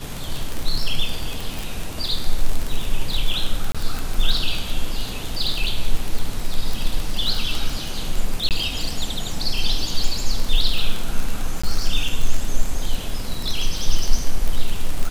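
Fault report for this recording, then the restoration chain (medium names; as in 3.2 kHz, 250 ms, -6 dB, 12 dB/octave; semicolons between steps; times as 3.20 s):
crackle 37 per s -19 dBFS
3.72–3.75 s: dropout 26 ms
8.49–8.51 s: dropout 18 ms
11.62–11.63 s: dropout 15 ms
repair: de-click; interpolate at 3.72 s, 26 ms; interpolate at 8.49 s, 18 ms; interpolate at 11.62 s, 15 ms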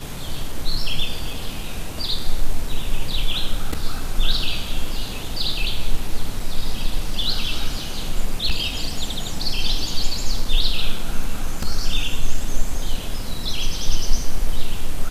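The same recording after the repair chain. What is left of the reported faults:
nothing left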